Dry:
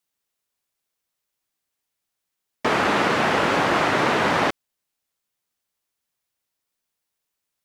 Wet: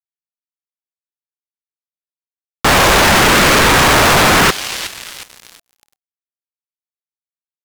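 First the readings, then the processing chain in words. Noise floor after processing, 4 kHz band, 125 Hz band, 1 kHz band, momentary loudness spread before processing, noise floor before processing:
under -85 dBFS, +15.5 dB, +13.5 dB, +9.0 dB, 4 LU, -82 dBFS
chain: thin delay 0.364 s, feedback 65%, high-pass 4000 Hz, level -18 dB; fuzz box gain 43 dB, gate -53 dBFS; ring modulator with a swept carrier 540 Hz, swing 55%, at 0.86 Hz; gain +7 dB

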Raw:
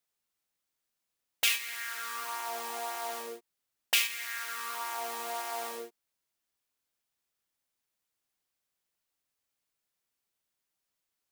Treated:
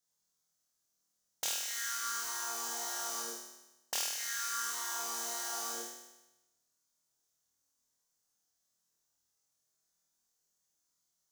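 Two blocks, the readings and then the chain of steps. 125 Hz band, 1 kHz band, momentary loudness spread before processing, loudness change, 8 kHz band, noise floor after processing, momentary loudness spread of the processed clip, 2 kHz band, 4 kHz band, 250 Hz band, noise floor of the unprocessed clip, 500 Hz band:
n/a, -4.5 dB, 13 LU, -3.0 dB, +3.5 dB, -82 dBFS, 7 LU, -7.0 dB, -5.0 dB, -1.0 dB, -85 dBFS, -8.0 dB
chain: fifteen-band EQ 160 Hz +4 dB, 2500 Hz -10 dB, 6300 Hz +11 dB; compressor, threshold -31 dBFS, peak gain reduction 10.5 dB; flutter echo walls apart 4.3 m, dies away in 1 s; gain -4.5 dB

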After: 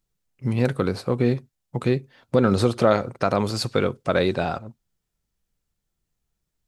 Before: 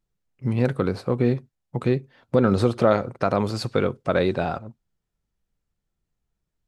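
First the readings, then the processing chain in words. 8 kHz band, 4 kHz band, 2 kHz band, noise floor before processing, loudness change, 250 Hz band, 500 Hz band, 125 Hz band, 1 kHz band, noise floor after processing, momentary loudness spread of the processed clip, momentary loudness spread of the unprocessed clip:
n/a, +4.5 dB, +1.5 dB, -81 dBFS, +0.5 dB, 0.0 dB, 0.0 dB, 0.0 dB, +0.5 dB, -80 dBFS, 9 LU, 9 LU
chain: high shelf 3300 Hz +7.5 dB

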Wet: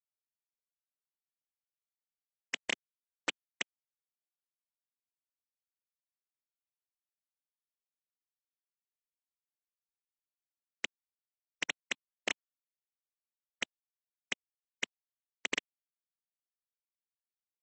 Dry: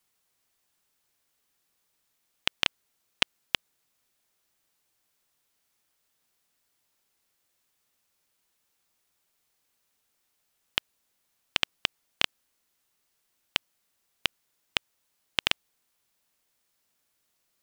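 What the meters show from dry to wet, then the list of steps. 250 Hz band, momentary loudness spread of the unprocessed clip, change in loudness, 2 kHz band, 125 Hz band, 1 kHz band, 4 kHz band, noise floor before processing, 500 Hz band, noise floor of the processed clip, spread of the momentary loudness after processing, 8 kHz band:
-3.5 dB, 5 LU, -9.0 dB, -5.5 dB, -15.5 dB, -9.5 dB, -12.5 dB, -76 dBFS, -4.0 dB, under -85 dBFS, 5 LU, -1.5 dB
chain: dispersion highs, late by 71 ms, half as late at 610 Hz; bit-crush 8-bit; resonant high shelf 4500 Hz -10.5 dB, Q 1.5; Schmitt trigger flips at -25 dBFS; HPF 250 Hz 24 dB/oct; gain +12 dB; MP3 32 kbps 32000 Hz

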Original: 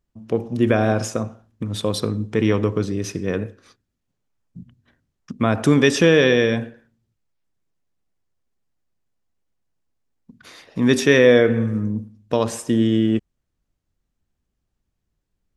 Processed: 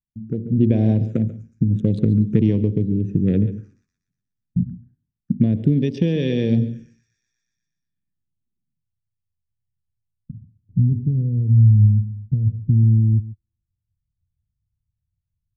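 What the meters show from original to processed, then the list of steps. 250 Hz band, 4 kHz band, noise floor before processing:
0.0 dB, -15.0 dB, -77 dBFS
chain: Wiener smoothing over 41 samples; LPF 9400 Hz; gate with hold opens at -43 dBFS; on a send: thin delay 0.121 s, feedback 62%, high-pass 5100 Hz, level -16.5 dB; on the sum: envelope phaser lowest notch 520 Hz, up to 1300 Hz, full sweep at -17.5 dBFS; compressor 3:1, threshold -32 dBFS, peak gain reduction 15.5 dB; bell 160 Hz +11.5 dB 2.3 oct; echo 0.139 s -16 dB; low-pass sweep 6500 Hz -> 100 Hz, 7.8–8.92; low shelf 440 Hz +6 dB; rotary speaker horn 0.75 Hz; AGC gain up to 12 dB; gain -4 dB

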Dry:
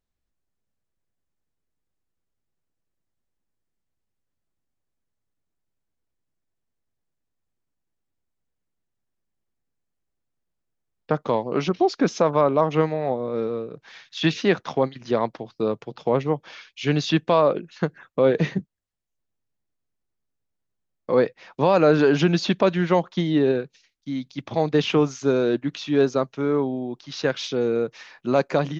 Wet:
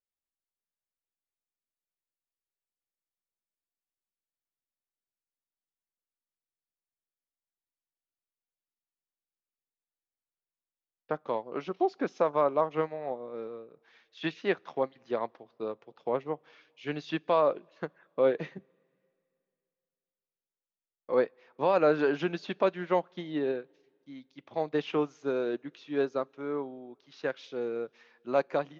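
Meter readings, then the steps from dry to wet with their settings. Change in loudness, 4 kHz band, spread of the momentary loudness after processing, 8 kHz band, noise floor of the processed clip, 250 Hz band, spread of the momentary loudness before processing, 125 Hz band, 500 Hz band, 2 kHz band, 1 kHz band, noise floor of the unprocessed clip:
-8.5 dB, -14.0 dB, 15 LU, n/a, under -85 dBFS, -12.0 dB, 10 LU, -17.5 dB, -8.0 dB, -8.5 dB, -7.0 dB, -79 dBFS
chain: tone controls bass -11 dB, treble -9 dB; two-slope reverb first 0.22 s, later 2.7 s, from -18 dB, DRR 19.5 dB; upward expander 1.5:1, over -35 dBFS; gain -5 dB

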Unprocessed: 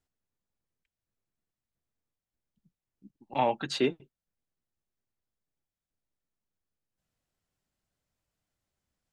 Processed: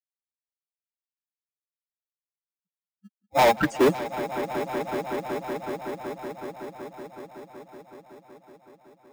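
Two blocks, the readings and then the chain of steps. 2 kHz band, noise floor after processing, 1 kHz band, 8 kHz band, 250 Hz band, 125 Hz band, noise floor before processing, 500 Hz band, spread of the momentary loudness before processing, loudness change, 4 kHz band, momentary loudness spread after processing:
+12.5 dB, under -85 dBFS, +9.0 dB, +9.5 dB, +8.5 dB, +8.5 dB, under -85 dBFS, +10.0 dB, 3 LU, +3.5 dB, +4.0 dB, 22 LU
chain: per-bin expansion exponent 3; Butterworth band-stop 3900 Hz, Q 0.56; tube stage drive 38 dB, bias 0.4; HPF 160 Hz 12 dB/oct; on a send: swelling echo 0.187 s, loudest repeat 5, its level -14.5 dB; on the sum: low-pass opened by the level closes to 1500 Hz, open at -37.5 dBFS; in parallel at -9 dB: sample-rate reducer 1500 Hz, jitter 0%; on the sum: maximiser +31 dB; gain -8.5 dB

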